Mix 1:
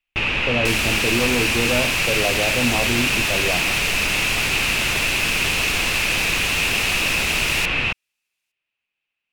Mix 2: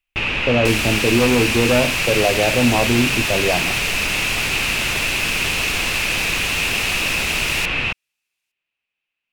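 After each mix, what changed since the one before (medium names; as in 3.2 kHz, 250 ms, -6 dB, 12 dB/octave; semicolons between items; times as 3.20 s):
speech +6.0 dB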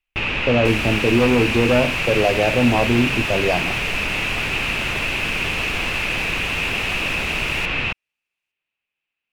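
second sound -6.5 dB; master: add treble shelf 4 kHz -6 dB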